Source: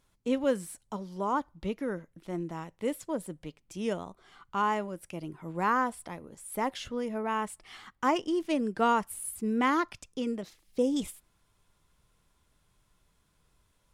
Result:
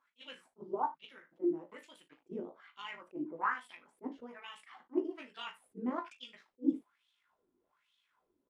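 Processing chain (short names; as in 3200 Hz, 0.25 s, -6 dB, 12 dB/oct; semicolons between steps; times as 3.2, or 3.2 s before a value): ten-band EQ 125 Hz -10 dB, 250 Hz +5 dB, 500 Hz -4 dB; in parallel at 0 dB: compressor, threshold -40 dBFS, peak gain reduction 17.5 dB; on the sum: wah 0.71 Hz 320–3400 Hz, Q 5; reverse bouncing-ball echo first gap 20 ms, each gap 1.2×, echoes 5; granular stretch 0.61×, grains 38 ms; attack slew limiter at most 530 dB/s; gain +1 dB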